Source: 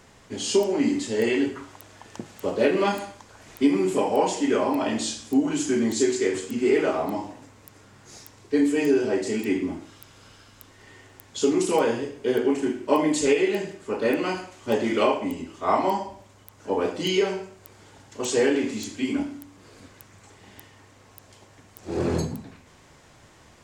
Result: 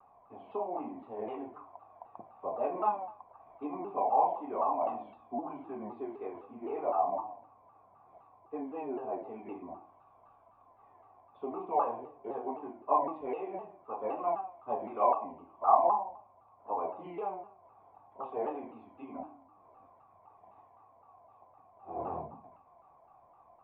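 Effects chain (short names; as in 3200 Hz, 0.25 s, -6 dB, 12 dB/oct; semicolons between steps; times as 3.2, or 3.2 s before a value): vocal tract filter a; shaped vibrato saw down 3.9 Hz, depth 160 cents; gain +6 dB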